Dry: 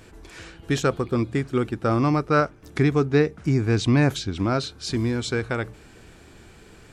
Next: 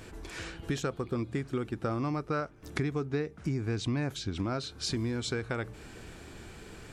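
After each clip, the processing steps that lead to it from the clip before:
downward compressor 4 to 1, threshold −32 dBFS, peak gain reduction 15 dB
level +1 dB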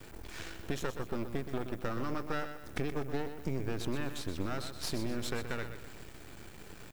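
background noise violet −61 dBFS
half-wave rectification
on a send: repeating echo 124 ms, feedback 41%, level −9.5 dB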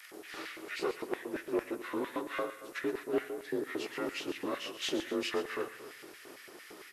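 partials spread apart or drawn together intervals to 88%
auto-filter high-pass square 4.4 Hz 370–1,900 Hz
on a send at −16 dB: convolution reverb RT60 1.1 s, pre-delay 5 ms
on the sum: level +3 dB

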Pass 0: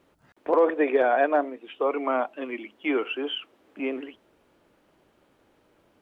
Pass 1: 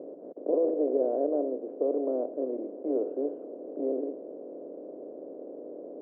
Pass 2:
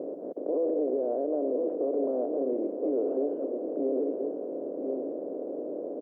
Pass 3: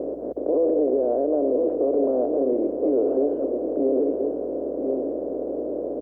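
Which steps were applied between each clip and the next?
compressor on every frequency bin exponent 0.4; Chebyshev band-pass filter 170–580 Hz, order 3; level −7 dB
single-tap delay 1,016 ms −10 dB; brickwall limiter −27.5 dBFS, peak gain reduction 11.5 dB; level +6.5 dB
mains hum 60 Hz, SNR 32 dB; level +7 dB

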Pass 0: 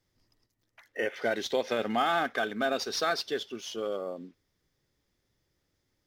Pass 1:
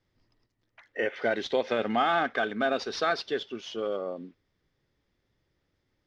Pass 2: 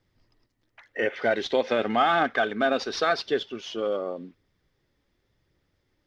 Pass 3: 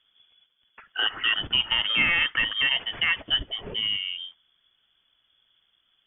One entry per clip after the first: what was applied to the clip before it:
low-pass filter 3,800 Hz 12 dB per octave; level +2 dB
phase shifter 0.9 Hz, delay 4.1 ms, feedback 23%; level +3 dB
dynamic equaliser 770 Hz, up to −5 dB, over −34 dBFS, Q 0.71; voice inversion scrambler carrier 3,400 Hz; level +3 dB

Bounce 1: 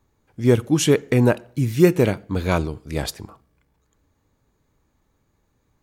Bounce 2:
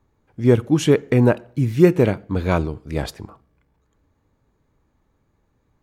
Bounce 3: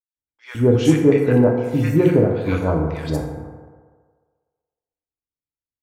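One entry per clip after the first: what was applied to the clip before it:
high-shelf EQ 3,700 Hz −10.5 dB; level +1.5 dB
noise gate −36 dBFS, range −38 dB; three-band delay without the direct sound mids, highs, lows 60/160 ms, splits 1,300/5,100 Hz; feedback delay network reverb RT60 1.6 s, low-frequency decay 0.75×, high-frequency decay 0.4×, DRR 1 dB; level −1.5 dB

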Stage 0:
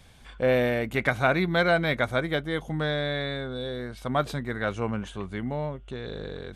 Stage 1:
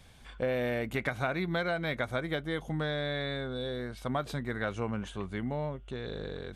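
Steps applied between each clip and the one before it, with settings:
downward compressor, threshold −25 dBFS, peak gain reduction 8 dB
level −2.5 dB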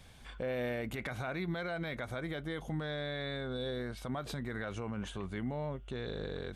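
brickwall limiter −28.5 dBFS, peak gain reduction 11 dB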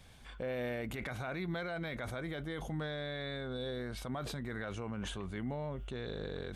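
level that may fall only so fast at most 29 dB per second
level −2 dB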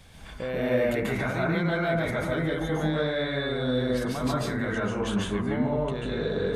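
convolution reverb RT60 0.65 s, pre-delay 130 ms, DRR −5.5 dB
level +5.5 dB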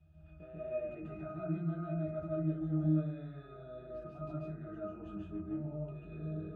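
resonances in every octave D#, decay 0.27 s

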